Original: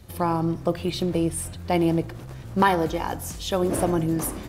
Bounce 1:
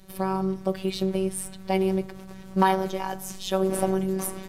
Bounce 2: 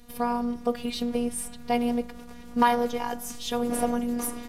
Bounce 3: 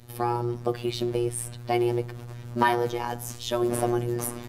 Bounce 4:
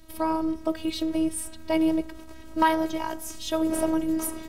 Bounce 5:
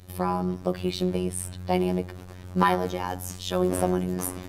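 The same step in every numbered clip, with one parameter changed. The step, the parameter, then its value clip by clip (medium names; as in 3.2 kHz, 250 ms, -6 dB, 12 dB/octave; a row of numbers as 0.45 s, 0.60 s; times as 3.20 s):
robot voice, frequency: 190 Hz, 240 Hz, 120 Hz, 320 Hz, 91 Hz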